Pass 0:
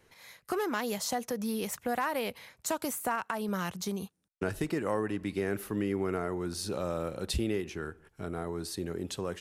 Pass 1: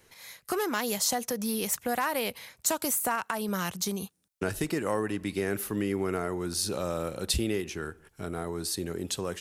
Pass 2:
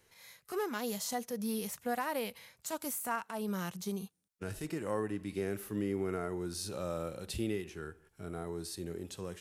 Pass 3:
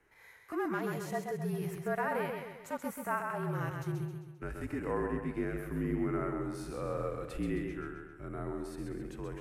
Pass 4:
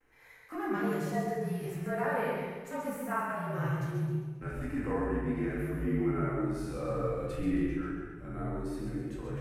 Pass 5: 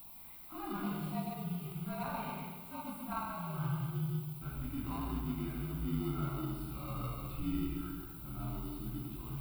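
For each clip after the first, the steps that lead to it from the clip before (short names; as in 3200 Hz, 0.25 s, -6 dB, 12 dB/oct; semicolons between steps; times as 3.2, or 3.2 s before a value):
high shelf 3700 Hz +8.5 dB; gain +1.5 dB
harmonic-percussive split percussive -11 dB; gain -4 dB
resonant high shelf 2800 Hz -11.5 dB, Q 1.5; frequency shift -46 Hz; warbling echo 0.132 s, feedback 48%, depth 52 cents, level -5 dB
vibrato 0.36 Hz 22 cents; shoebox room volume 370 m³, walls mixed, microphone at 2.1 m; gain -4.5 dB
added noise violet -47 dBFS; in parallel at -9 dB: sample-and-hold 27×; on the sum: fixed phaser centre 1800 Hz, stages 6; gain -4.5 dB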